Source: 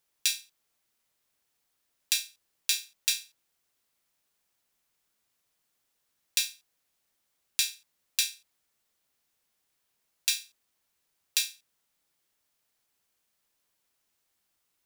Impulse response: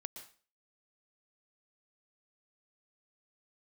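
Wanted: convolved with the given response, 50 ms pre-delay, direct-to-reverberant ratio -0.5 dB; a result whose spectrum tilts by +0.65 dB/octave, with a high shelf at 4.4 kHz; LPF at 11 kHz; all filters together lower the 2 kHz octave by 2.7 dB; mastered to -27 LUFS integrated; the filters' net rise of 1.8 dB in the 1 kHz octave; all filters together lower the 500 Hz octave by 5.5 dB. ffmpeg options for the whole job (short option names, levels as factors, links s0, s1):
-filter_complex "[0:a]lowpass=11000,equalizer=f=500:t=o:g=-8,equalizer=f=1000:t=o:g=5.5,equalizer=f=2000:t=o:g=-3,highshelf=f=4400:g=-4.5,asplit=2[s0][s1];[1:a]atrim=start_sample=2205,adelay=50[s2];[s1][s2]afir=irnorm=-1:irlink=0,volume=1.58[s3];[s0][s3]amix=inputs=2:normalize=0,volume=1.5"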